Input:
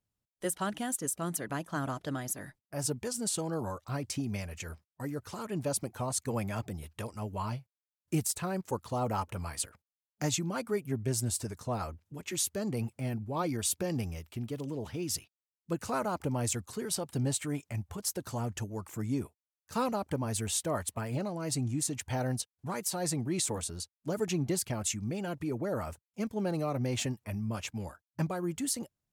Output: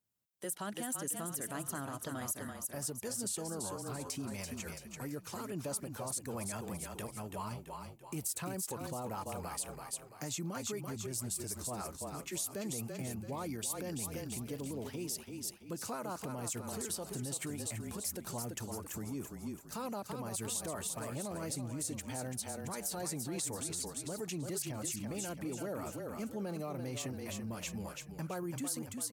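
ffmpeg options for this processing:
-filter_complex "[0:a]asplit=2[s0][s1];[s1]asplit=5[s2][s3][s4][s5][s6];[s2]adelay=335,afreqshift=-30,volume=0.447[s7];[s3]adelay=670,afreqshift=-60,volume=0.188[s8];[s4]adelay=1005,afreqshift=-90,volume=0.0785[s9];[s5]adelay=1340,afreqshift=-120,volume=0.0331[s10];[s6]adelay=1675,afreqshift=-150,volume=0.014[s11];[s7][s8][s9][s10][s11]amix=inputs=5:normalize=0[s12];[s0][s12]amix=inputs=2:normalize=0,alimiter=level_in=1.78:limit=0.0631:level=0:latency=1:release=65,volume=0.562,highpass=120,highshelf=f=8300:g=10,volume=0.75"

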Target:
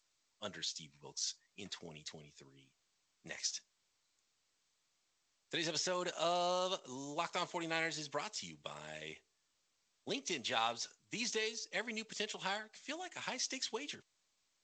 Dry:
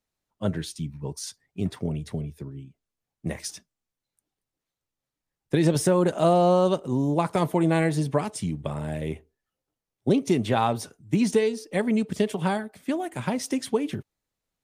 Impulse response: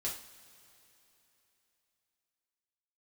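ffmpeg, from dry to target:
-filter_complex "[0:a]acrossover=split=5400[s0][s1];[s1]acompressor=threshold=0.00447:ratio=4:attack=1:release=60[s2];[s0][s2]amix=inputs=2:normalize=0,aderivative,volume=1.88" -ar 16000 -c:a g722

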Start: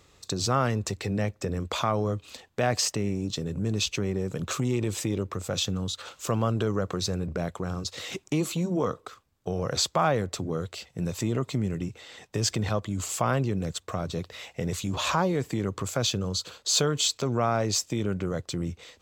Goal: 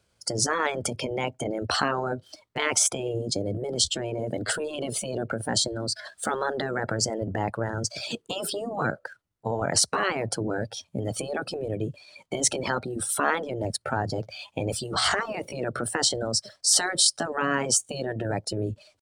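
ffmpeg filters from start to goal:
-af "afftdn=nr=17:nf=-39,asetrate=53981,aresample=44100,atempo=0.816958,afftfilt=real='re*lt(hypot(re,im),0.2)':imag='im*lt(hypot(re,im),0.2)':win_size=1024:overlap=0.75,volume=2"

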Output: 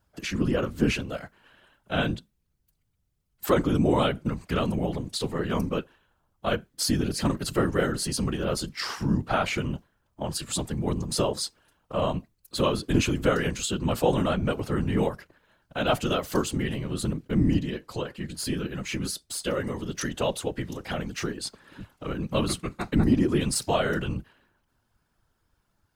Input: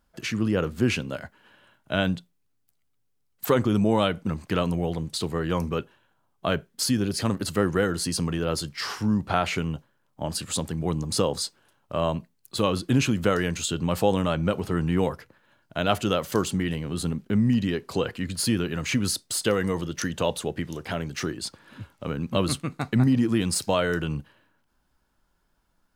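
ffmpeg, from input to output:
-filter_complex "[0:a]asplit=3[s0][s1][s2];[s0]afade=t=out:st=17.58:d=0.02[s3];[s1]flanger=delay=5:depth=1.2:regen=66:speed=1.2:shape=triangular,afade=t=in:st=17.58:d=0.02,afade=t=out:st=19.83:d=0.02[s4];[s2]afade=t=in:st=19.83:d=0.02[s5];[s3][s4][s5]amix=inputs=3:normalize=0,afftfilt=real='hypot(re,im)*cos(2*PI*random(0))':imag='hypot(re,im)*sin(2*PI*random(1))':win_size=512:overlap=0.75,volume=1.78"

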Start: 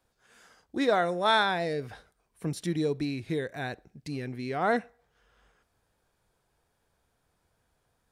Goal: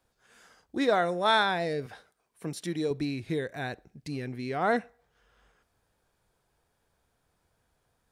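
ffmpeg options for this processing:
-filter_complex "[0:a]asettb=1/sr,asplit=3[s0][s1][s2];[s0]atrim=end=1.864[s3];[s1]atrim=start=1.86:end=2.91,asetpts=PTS-STARTPTS,afade=t=in:d=0.004:c=qsin,afade=t=out:st=1.046:d=0.004:c=qsin,highpass=f=250:p=1[s4];[s2]atrim=start=2.906[s5];[s3][s4]acrossfade=d=0.004:c1=hsin:c2=qsin[s6];[s6][s5]acrossfade=d=0.004:c1=qsin:c2=hsin"

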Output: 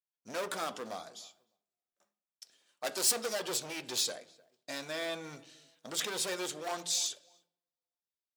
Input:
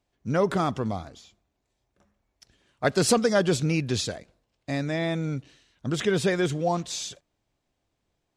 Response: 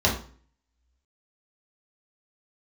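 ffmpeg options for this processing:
-filter_complex "[0:a]asplit=2[s0][s1];[s1]adelay=303,lowpass=f=1500:p=1,volume=0.0668,asplit=2[s2][s3];[s3]adelay=303,lowpass=f=1500:p=1,volume=0.22[s4];[s0][s2][s4]amix=inputs=3:normalize=0,volume=18.8,asoftclip=hard,volume=0.0531,crystalizer=i=3:c=0,agate=range=0.0224:threshold=0.00126:ratio=3:detection=peak,highpass=440,asplit=2[s5][s6];[1:a]atrim=start_sample=2205,asetrate=33957,aresample=44100[s7];[s6][s7]afir=irnorm=-1:irlink=0,volume=0.0422[s8];[s5][s8]amix=inputs=2:normalize=0,flanger=delay=2.4:depth=3.4:regen=-71:speed=0.29:shape=triangular,adynamicequalizer=threshold=0.00794:dfrequency=3600:dqfactor=0.7:tfrequency=3600:tqfactor=0.7:attack=5:release=100:ratio=0.375:range=2:mode=cutabove:tftype=highshelf,volume=0.75"

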